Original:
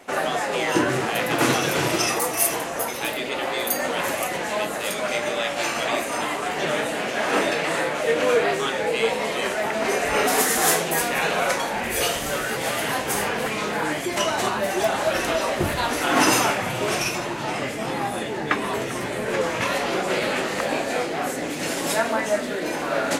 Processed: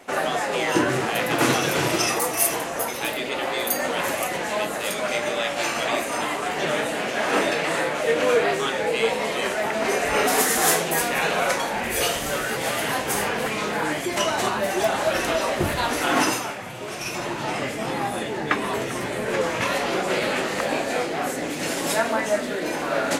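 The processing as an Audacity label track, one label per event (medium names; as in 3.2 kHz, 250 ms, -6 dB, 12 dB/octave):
16.100000	17.270000	dip -9 dB, fades 0.30 s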